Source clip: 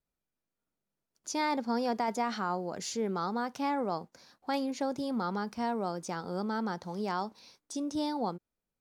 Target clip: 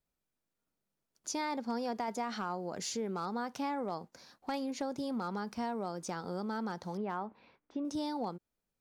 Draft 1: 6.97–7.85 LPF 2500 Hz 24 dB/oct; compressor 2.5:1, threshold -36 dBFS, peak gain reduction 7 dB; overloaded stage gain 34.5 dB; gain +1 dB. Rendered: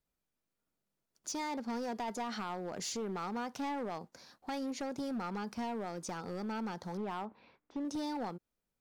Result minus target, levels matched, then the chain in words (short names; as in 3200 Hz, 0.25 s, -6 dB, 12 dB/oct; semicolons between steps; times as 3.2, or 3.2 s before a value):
overloaded stage: distortion +20 dB
6.97–7.85 LPF 2500 Hz 24 dB/oct; compressor 2.5:1, threshold -36 dBFS, peak gain reduction 7 dB; overloaded stage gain 28 dB; gain +1 dB